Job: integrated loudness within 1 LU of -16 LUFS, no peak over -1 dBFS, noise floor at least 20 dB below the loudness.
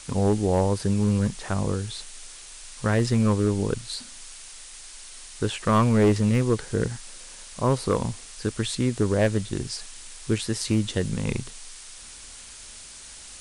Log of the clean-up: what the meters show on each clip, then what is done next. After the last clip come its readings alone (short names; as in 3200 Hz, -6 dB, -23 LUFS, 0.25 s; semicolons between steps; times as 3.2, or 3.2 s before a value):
clipped 0.6%; flat tops at -13.5 dBFS; noise floor -44 dBFS; noise floor target -45 dBFS; loudness -25.0 LUFS; peak -13.5 dBFS; loudness target -16.0 LUFS
-> clip repair -13.5 dBFS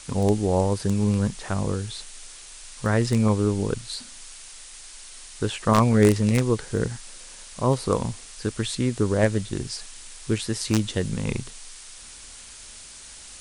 clipped 0.0%; noise floor -44 dBFS; noise floor target -45 dBFS
-> noise print and reduce 6 dB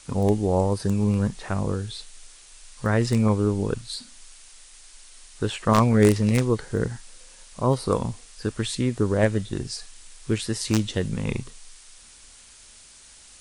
noise floor -49 dBFS; loudness -24.5 LUFS; peak -4.5 dBFS; loudness target -16.0 LUFS
-> gain +8.5 dB; limiter -1 dBFS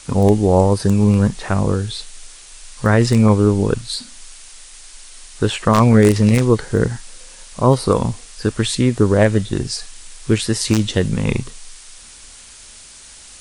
loudness -16.5 LUFS; peak -1.0 dBFS; noise floor -41 dBFS